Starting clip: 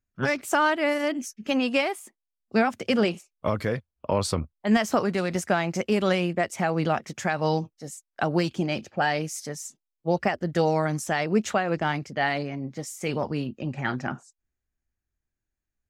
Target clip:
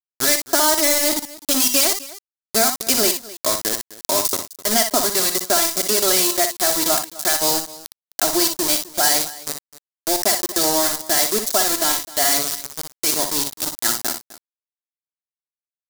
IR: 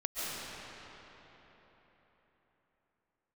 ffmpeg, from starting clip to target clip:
-filter_complex "[0:a]highpass=280,aemphasis=mode=reproduction:type=50fm,agate=range=-33dB:threshold=-46dB:ratio=3:detection=peak,highshelf=f=10k:g=7.5,aecho=1:1:3:0.82,asplit=2[a][b];[b]acompressor=threshold=-33dB:ratio=8,volume=-1dB[c];[a][c]amix=inputs=2:normalize=0,aeval=exprs='val(0)*gte(abs(val(0)),0.0708)':c=same,aexciter=amount=7.3:drive=5.3:freq=3.9k,asplit=2[d][e];[e]aecho=0:1:59|60|257:0.126|0.422|0.119[f];[d][f]amix=inputs=2:normalize=0,volume=-1dB"

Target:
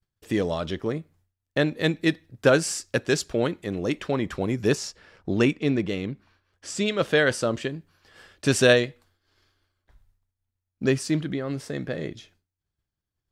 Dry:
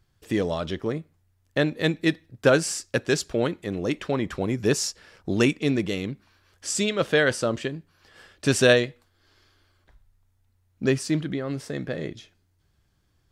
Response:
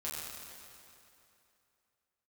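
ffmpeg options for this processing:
-filter_complex "[0:a]asettb=1/sr,asplit=3[a][b][c];[a]atrim=end=4.754[d];[b]atrim=start=4.75:end=6.86,asetpts=PTS-STARTPTS,afade=t=in:d=0.004:c=qsin,afade=t=out:st=2.106:d=0.004:c=qsin,highshelf=f=5.5k:g=-12[e];[c]atrim=start=6.856[f];[d][e]acrossfade=d=0.004:c1=hsin:c2=qsin[g];[g][f]acrossfade=d=0.004:c1=qsin:c2=hsin,agate=range=-33dB:threshold=-55dB:ratio=3:detection=peak"

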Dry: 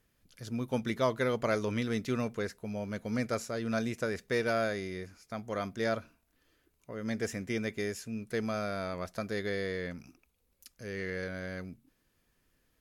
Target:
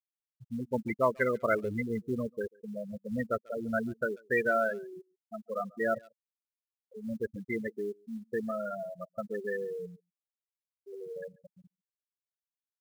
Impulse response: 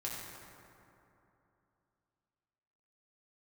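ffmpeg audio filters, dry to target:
-filter_complex "[0:a]afftfilt=real='re*gte(hypot(re,im),0.0794)':imag='im*gte(hypot(re,im),0.0794)':win_size=1024:overlap=0.75,bass=f=250:g=-2,treble=f=4k:g=11,asplit=2[a][b];[b]adelay=140,highpass=300,lowpass=3.4k,asoftclip=type=hard:threshold=-26dB,volume=-26dB[c];[a][c]amix=inputs=2:normalize=0,crystalizer=i=9.5:c=0,acrusher=bits=8:mode=log:mix=0:aa=0.000001"

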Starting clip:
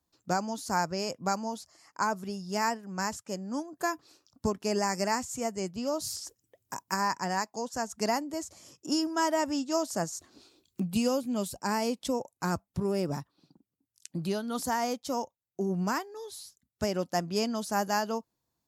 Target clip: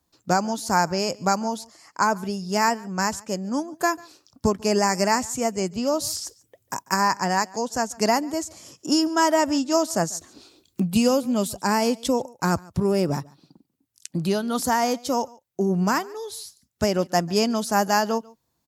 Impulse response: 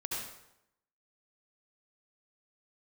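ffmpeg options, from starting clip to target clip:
-af "aecho=1:1:143:0.0631,volume=8dB"

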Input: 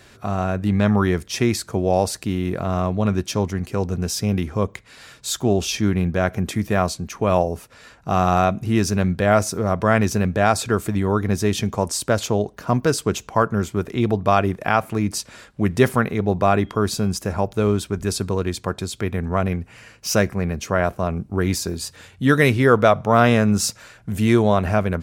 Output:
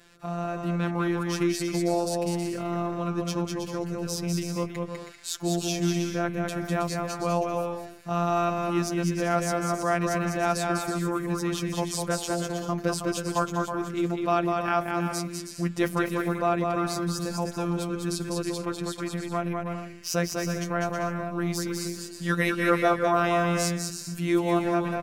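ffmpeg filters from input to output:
-af "afftfilt=real='hypot(re,im)*cos(PI*b)':imag='0':win_size=1024:overlap=0.75,aecho=1:1:200|320|392|435.2|461.1:0.631|0.398|0.251|0.158|0.1,volume=-4.5dB"

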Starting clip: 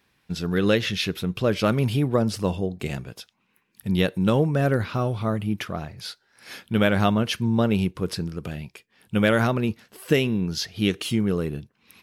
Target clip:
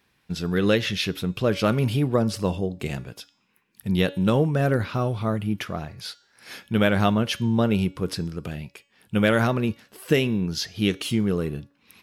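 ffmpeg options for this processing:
-af "bandreject=f=282.9:t=h:w=4,bandreject=f=565.8:t=h:w=4,bandreject=f=848.7:t=h:w=4,bandreject=f=1.1316k:t=h:w=4,bandreject=f=1.4145k:t=h:w=4,bandreject=f=1.6974k:t=h:w=4,bandreject=f=1.9803k:t=h:w=4,bandreject=f=2.2632k:t=h:w=4,bandreject=f=2.5461k:t=h:w=4,bandreject=f=2.829k:t=h:w=4,bandreject=f=3.1119k:t=h:w=4,bandreject=f=3.3948k:t=h:w=4,bandreject=f=3.6777k:t=h:w=4,bandreject=f=3.9606k:t=h:w=4,bandreject=f=4.2435k:t=h:w=4,bandreject=f=4.5264k:t=h:w=4,bandreject=f=4.8093k:t=h:w=4,bandreject=f=5.0922k:t=h:w=4,bandreject=f=5.3751k:t=h:w=4,bandreject=f=5.658k:t=h:w=4,bandreject=f=5.9409k:t=h:w=4,bandreject=f=6.2238k:t=h:w=4,bandreject=f=6.5067k:t=h:w=4,bandreject=f=6.7896k:t=h:w=4,bandreject=f=7.0725k:t=h:w=4,bandreject=f=7.3554k:t=h:w=4,bandreject=f=7.6383k:t=h:w=4,bandreject=f=7.9212k:t=h:w=4,bandreject=f=8.2041k:t=h:w=4"

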